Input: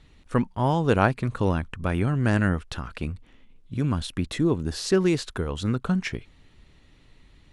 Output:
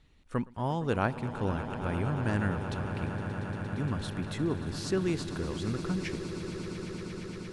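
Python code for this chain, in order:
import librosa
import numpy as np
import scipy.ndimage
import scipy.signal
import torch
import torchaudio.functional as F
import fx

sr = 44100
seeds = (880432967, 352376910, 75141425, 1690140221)

y = fx.echo_swell(x, sr, ms=116, loudest=8, wet_db=-14.5)
y = y * 10.0 ** (-8.5 / 20.0)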